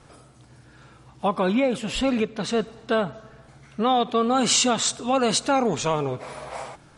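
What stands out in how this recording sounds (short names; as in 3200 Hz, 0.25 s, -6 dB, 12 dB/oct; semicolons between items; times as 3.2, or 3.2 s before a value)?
noise floor -52 dBFS; spectral tilt -3.5 dB/oct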